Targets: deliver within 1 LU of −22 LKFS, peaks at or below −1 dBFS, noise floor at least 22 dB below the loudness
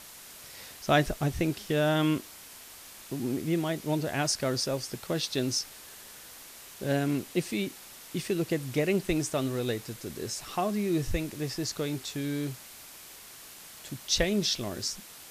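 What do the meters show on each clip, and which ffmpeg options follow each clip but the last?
background noise floor −48 dBFS; target noise floor −53 dBFS; integrated loudness −30.5 LKFS; sample peak −10.0 dBFS; target loudness −22.0 LKFS
→ -af "afftdn=noise_reduction=6:noise_floor=-48"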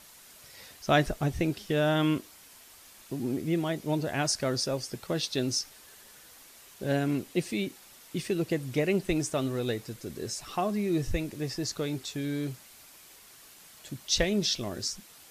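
background noise floor −53 dBFS; integrated loudness −30.5 LKFS; sample peak −10.0 dBFS; target loudness −22.0 LKFS
→ -af "volume=8.5dB"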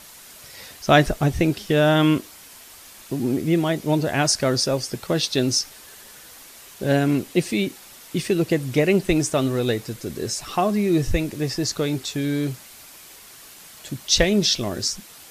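integrated loudness −22.0 LKFS; sample peak −1.5 dBFS; background noise floor −45 dBFS

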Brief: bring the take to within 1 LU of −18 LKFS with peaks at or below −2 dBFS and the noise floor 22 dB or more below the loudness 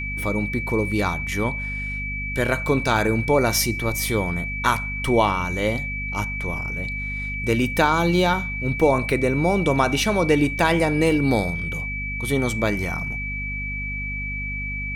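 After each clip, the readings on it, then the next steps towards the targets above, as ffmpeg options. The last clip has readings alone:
mains hum 50 Hz; hum harmonics up to 250 Hz; level of the hum −29 dBFS; interfering tone 2,300 Hz; level of the tone −28 dBFS; integrated loudness −22.5 LKFS; sample peak −3.5 dBFS; target loudness −18.0 LKFS
→ -af "bandreject=frequency=50:width_type=h:width=6,bandreject=frequency=100:width_type=h:width=6,bandreject=frequency=150:width_type=h:width=6,bandreject=frequency=200:width_type=h:width=6,bandreject=frequency=250:width_type=h:width=6"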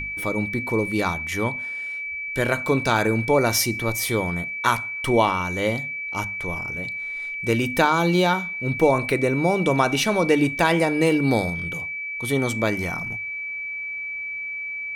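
mains hum none found; interfering tone 2,300 Hz; level of the tone −28 dBFS
→ -af "bandreject=frequency=2300:width=30"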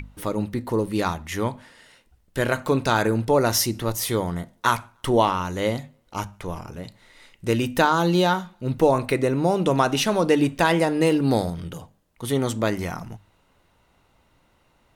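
interfering tone none found; integrated loudness −23.0 LKFS; sample peak −4.5 dBFS; target loudness −18.0 LKFS
→ -af "volume=5dB,alimiter=limit=-2dB:level=0:latency=1"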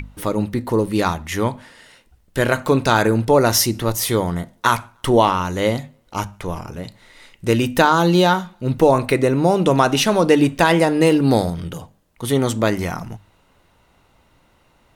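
integrated loudness −18.0 LKFS; sample peak −2.0 dBFS; background noise floor −58 dBFS

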